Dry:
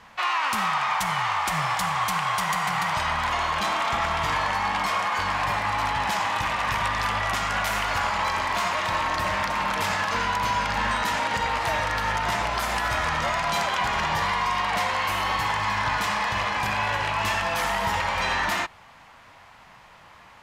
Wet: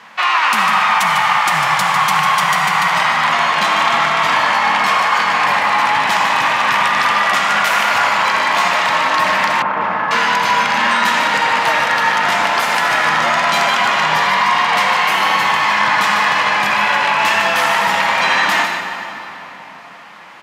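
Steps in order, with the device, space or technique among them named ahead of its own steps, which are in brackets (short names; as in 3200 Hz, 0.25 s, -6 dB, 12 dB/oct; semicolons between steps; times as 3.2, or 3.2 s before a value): PA in a hall (HPF 160 Hz 24 dB/oct; bell 2100 Hz +5 dB 2.5 oct; echo 0.15 s -8 dB; reverb RT60 4.1 s, pre-delay 61 ms, DRR 6 dB); 9.62–10.11 LPF 1300 Hz 12 dB/oct; gain +6 dB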